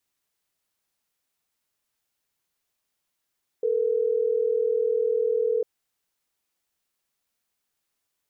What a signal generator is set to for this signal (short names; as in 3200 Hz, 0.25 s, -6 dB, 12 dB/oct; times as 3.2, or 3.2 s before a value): call progress tone ringback tone, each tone -23.5 dBFS